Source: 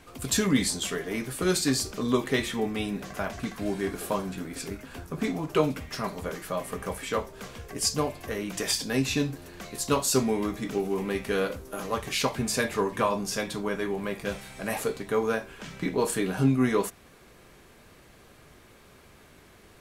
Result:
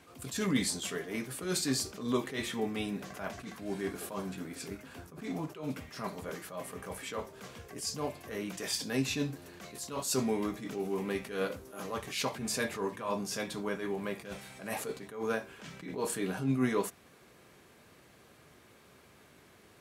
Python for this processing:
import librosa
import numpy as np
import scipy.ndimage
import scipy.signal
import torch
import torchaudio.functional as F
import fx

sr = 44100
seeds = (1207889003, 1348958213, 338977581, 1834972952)

y = scipy.signal.sosfilt(scipy.signal.butter(2, 90.0, 'highpass', fs=sr, output='sos'), x)
y = fx.attack_slew(y, sr, db_per_s=110.0)
y = y * librosa.db_to_amplitude(-4.5)